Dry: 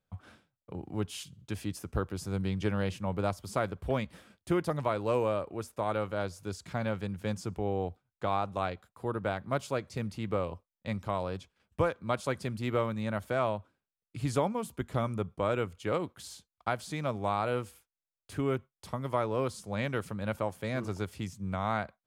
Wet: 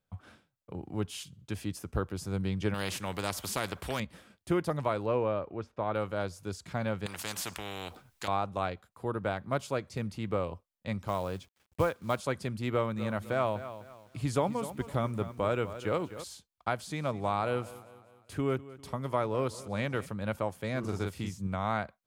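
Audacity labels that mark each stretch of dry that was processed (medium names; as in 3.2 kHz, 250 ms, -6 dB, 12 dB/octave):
2.740000	4.000000	spectrum-flattening compressor 2:1
5.060000	5.950000	distance through air 220 m
7.060000	8.280000	spectrum-flattening compressor 4:1
11.070000	12.200000	companded quantiser 6-bit
12.710000	16.240000	bit-crushed delay 252 ms, feedback 35%, word length 9-bit, level -12.5 dB
16.790000	20.060000	feedback delay 200 ms, feedback 50%, level -18 dB
20.800000	21.470000	doubling 41 ms -3 dB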